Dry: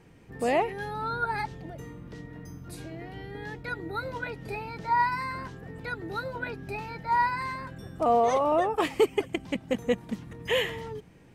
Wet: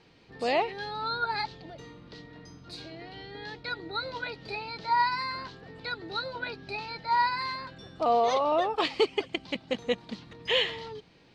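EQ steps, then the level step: resonant low-pass 4.3 kHz, resonance Q 4.2; bass shelf 270 Hz -10 dB; peaking EQ 1.8 kHz -3 dB 0.49 oct; 0.0 dB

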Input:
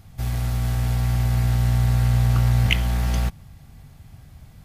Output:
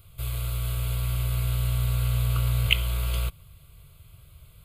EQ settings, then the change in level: treble shelf 2.6 kHz +10 dB; static phaser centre 1.2 kHz, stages 8; -4.0 dB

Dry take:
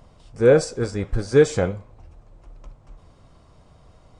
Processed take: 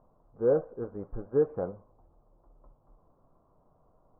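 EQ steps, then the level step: steep low-pass 1.2 kHz 36 dB/octave; peaking EQ 68 Hz -12.5 dB 2.2 oct; -9.0 dB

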